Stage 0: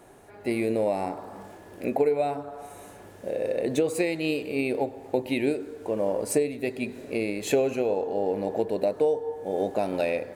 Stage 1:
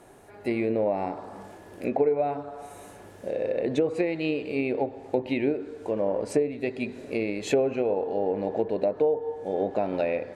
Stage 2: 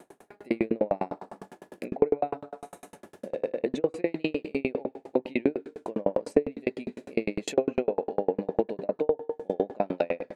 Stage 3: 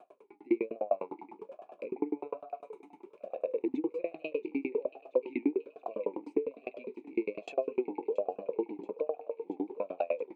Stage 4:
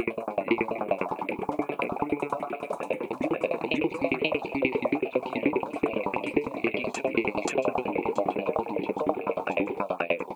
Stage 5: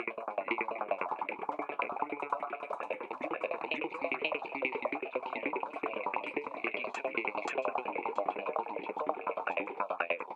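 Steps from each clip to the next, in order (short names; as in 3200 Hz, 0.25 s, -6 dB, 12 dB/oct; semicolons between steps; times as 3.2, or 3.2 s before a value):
treble ducked by the level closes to 1600 Hz, closed at -20 dBFS
resonant low shelf 130 Hz -11.5 dB, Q 1.5; dB-ramp tremolo decaying 9.9 Hz, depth 38 dB; gain +6 dB
in parallel at -2 dB: limiter -17 dBFS, peak gain reduction 10.5 dB; on the sum: thinning echo 0.679 s, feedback 73%, high-pass 920 Hz, level -17 dB; vowel sweep a-u 1.2 Hz
phaser stages 4, 2.4 Hz, lowest notch 310–1200 Hz; reverse echo 0.532 s -3.5 dB; spectral compressor 2:1; gain +7.5 dB
band-pass 1400 Hz, Q 1.1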